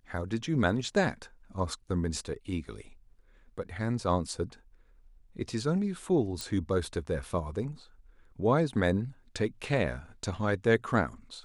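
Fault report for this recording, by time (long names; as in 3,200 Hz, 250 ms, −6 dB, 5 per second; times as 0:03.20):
0:06.41: click −19 dBFS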